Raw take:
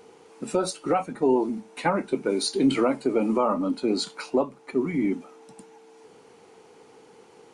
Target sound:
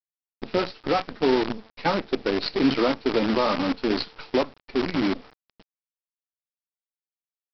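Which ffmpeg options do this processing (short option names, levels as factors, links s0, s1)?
-af "agate=range=0.0224:threshold=0.01:ratio=3:detection=peak,aresample=11025,acrusher=bits=5:dc=4:mix=0:aa=0.000001,aresample=44100"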